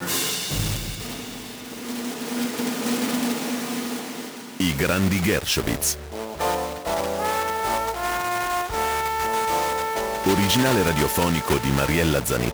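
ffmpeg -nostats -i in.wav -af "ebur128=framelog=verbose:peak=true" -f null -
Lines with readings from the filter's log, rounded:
Integrated loudness:
  I:         -23.5 LUFS
  Threshold: -33.7 LUFS
Loudness range:
  LRA:         5.8 LU
  Threshold: -43.9 LUFS
  LRA low:   -27.2 LUFS
  LRA high:  -21.4 LUFS
True peak:
  Peak:       -6.6 dBFS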